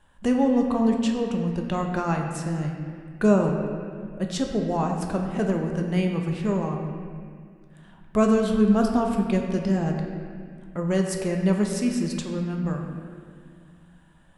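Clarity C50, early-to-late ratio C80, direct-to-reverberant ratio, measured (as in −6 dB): 3.5 dB, 5.0 dB, 1.5 dB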